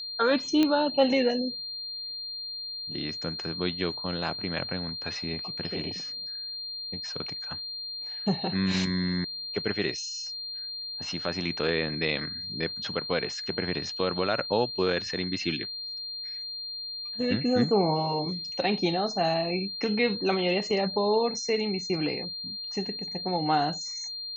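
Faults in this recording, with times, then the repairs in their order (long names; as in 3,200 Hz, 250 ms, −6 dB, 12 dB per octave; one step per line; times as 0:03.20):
whistle 4,200 Hz −34 dBFS
0:00.63: click −12 dBFS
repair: click removal
notch filter 4,200 Hz, Q 30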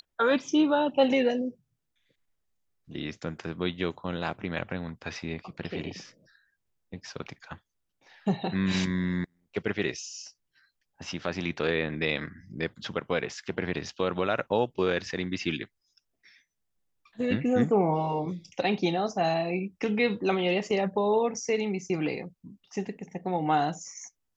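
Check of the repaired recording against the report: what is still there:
none of them is left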